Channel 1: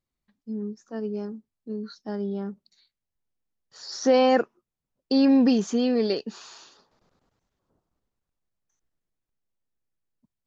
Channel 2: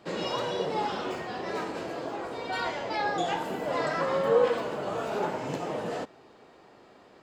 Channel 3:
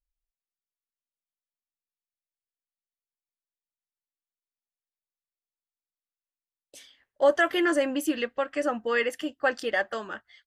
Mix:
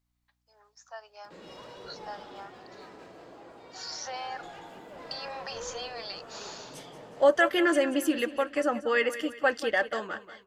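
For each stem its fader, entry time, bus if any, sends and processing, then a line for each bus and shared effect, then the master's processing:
+2.5 dB, 0.00 s, no send, no echo send, steep high-pass 670 Hz 48 dB/oct; compressor, threshold -39 dBFS, peak gain reduction 16 dB; hum 60 Hz, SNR 33 dB
-15.5 dB, 1.25 s, no send, echo send -5.5 dB, upward compressor, threshold -37 dBFS; one-sided clip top -30 dBFS
0.0 dB, 0.00 s, no send, echo send -14 dB, dry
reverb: off
echo: feedback echo 0.183 s, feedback 44%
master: dry

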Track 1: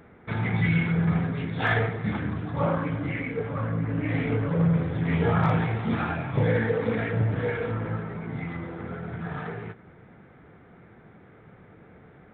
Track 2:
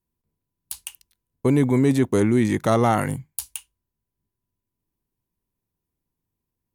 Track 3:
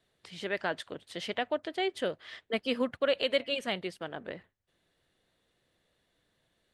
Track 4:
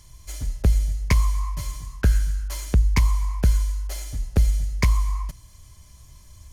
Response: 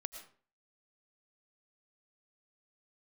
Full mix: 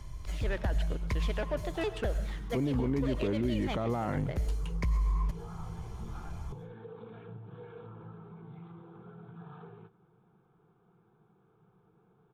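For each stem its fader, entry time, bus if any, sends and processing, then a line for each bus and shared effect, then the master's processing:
-12.5 dB, 0.15 s, no bus, no send, compressor 6:1, threshold -27 dBFS, peak gain reduction 8.5 dB; fixed phaser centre 390 Hz, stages 8
-1.0 dB, 1.10 s, bus A, no send, dry
-10.5 dB, 0.00 s, bus A, send -3 dB, sample leveller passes 2; shaped vibrato saw down 4.9 Hz, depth 250 cents
-4.5 dB, 0.00 s, bus A, send -11 dB, three-band squash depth 40%; auto duck -16 dB, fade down 1.80 s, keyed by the third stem
bus A: 0.0 dB, tape spacing loss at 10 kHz 30 dB; limiter -17 dBFS, peak gain reduction 7.5 dB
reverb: on, RT60 0.45 s, pre-delay 70 ms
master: limiter -22.5 dBFS, peak gain reduction 8 dB

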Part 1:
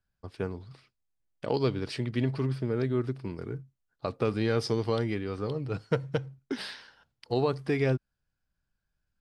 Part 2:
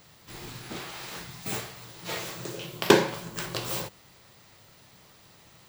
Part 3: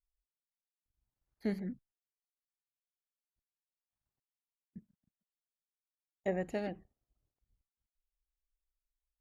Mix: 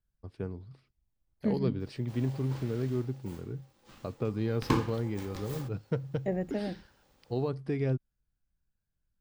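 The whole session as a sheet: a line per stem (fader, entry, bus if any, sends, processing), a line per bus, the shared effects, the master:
-11.5 dB, 0.00 s, no send, dry
2.72 s -10.5 dB -> 3.41 s -22 dB -> 4.34 s -22 dB -> 4.61 s -12.5 dB, 1.80 s, no send, ring modulator 670 Hz
-4.0 dB, 0.00 s, no send, dry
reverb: off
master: low shelf 490 Hz +11 dB

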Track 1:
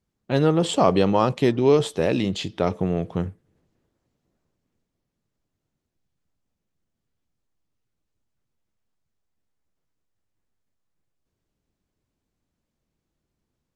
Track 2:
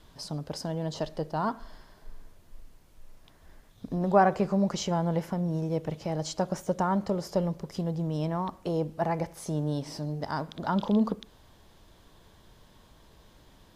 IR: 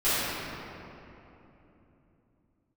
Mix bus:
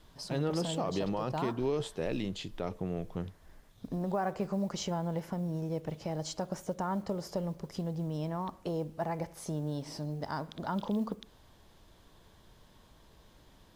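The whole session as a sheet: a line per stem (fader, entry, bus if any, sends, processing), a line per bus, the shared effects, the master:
-11.5 dB, 0.00 s, no send, dry
-3.0 dB, 0.00 s, no send, compressor 2:1, threshold -29 dBFS, peak gain reduction 7.5 dB; modulation noise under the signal 34 dB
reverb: off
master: limiter -22.5 dBFS, peak gain reduction 7.5 dB

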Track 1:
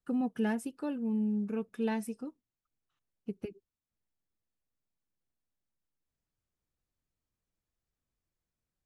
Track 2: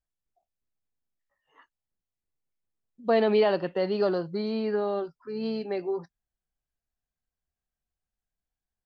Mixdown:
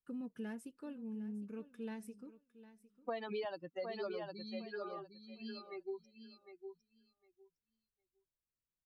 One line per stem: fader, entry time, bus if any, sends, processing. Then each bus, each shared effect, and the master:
-11.5 dB, 0.00 s, no send, echo send -16.5 dB, bell 770 Hz -13 dB 0.22 oct
-0.5 dB, 0.00 s, no send, echo send -9.5 dB, per-bin expansion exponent 3; low shelf 470 Hz -9 dB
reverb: off
echo: feedback echo 0.757 s, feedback 15%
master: compressor 6:1, threshold -38 dBFS, peak gain reduction 12.5 dB

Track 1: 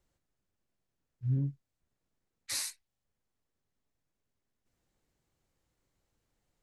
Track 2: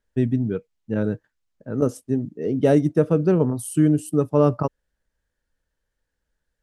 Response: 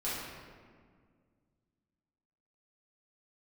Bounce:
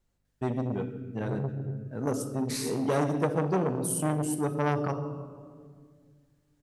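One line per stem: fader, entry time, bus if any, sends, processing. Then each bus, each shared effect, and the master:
-3.0 dB, 0.00 s, send -6.5 dB, hum 50 Hz, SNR 35 dB
-8.5 dB, 0.25 s, send -9.5 dB, high shelf 2400 Hz +10 dB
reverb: on, RT60 1.9 s, pre-delay 4 ms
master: core saturation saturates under 980 Hz

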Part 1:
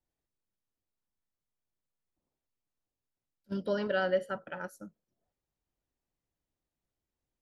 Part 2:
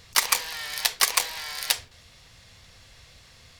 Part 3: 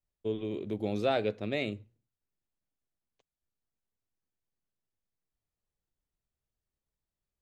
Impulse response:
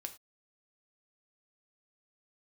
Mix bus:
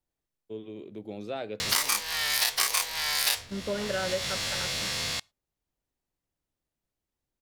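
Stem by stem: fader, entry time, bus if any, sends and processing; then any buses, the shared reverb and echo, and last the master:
+1.0 dB, 0.00 s, no send, dry
+1.0 dB, 1.60 s, send -17.5 dB, spectral dilation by 60 ms; three-band squash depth 70%
-7.5 dB, 0.25 s, send -12.5 dB, HPF 120 Hz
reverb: on, pre-delay 3 ms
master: compressor 2.5:1, threshold -27 dBFS, peak gain reduction 11 dB

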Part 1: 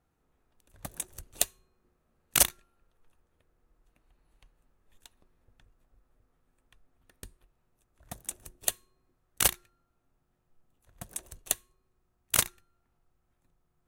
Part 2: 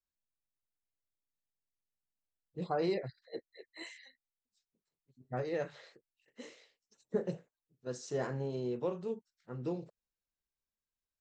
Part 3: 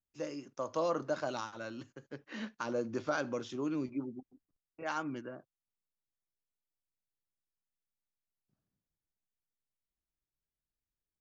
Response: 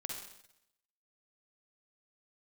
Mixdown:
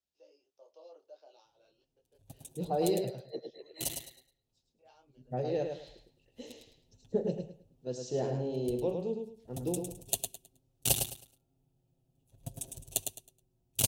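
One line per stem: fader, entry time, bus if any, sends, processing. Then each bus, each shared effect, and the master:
4.93 s -16 dB -> 5.45 s -5.5 dB, 1.45 s, no send, echo send -6 dB, low shelf 220 Hz +10.5 dB; comb 7.5 ms, depth 84%
+2.5 dB, 0.00 s, no send, echo send -5.5 dB, LPF 6900 Hz; bell 1800 Hz +4.5 dB 0.44 oct
-15.5 dB, 0.00 s, no send, no echo send, elliptic band-pass 420–5300 Hz, stop band 40 dB; detuned doubles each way 18 cents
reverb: off
echo: feedback echo 0.106 s, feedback 25%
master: HPF 56 Hz 12 dB/oct; band shelf 1500 Hz -16 dB 1.3 oct

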